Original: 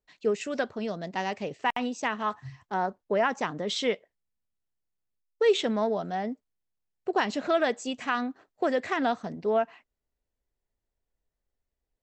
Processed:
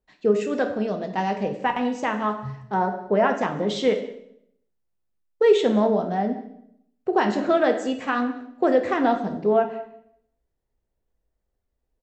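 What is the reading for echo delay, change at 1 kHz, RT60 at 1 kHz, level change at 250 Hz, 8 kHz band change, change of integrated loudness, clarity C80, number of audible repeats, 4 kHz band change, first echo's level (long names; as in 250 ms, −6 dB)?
187 ms, +5.0 dB, 0.65 s, +8.0 dB, can't be measured, +6.0 dB, 12.0 dB, 1, −0.5 dB, −21.5 dB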